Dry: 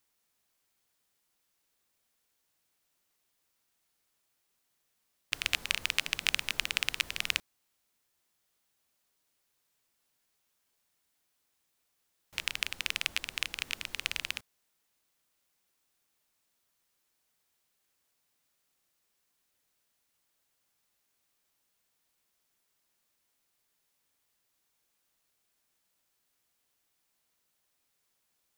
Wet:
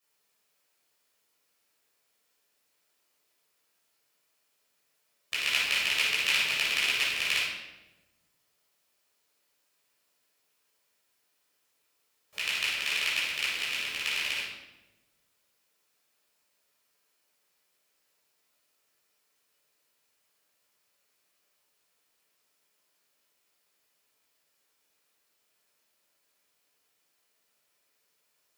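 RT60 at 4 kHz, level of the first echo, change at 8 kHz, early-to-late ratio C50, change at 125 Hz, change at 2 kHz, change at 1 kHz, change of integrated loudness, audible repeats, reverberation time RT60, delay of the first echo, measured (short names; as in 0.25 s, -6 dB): 0.80 s, none, +3.0 dB, -0.5 dB, n/a, +6.0 dB, +5.0 dB, +5.5 dB, none, 1.1 s, none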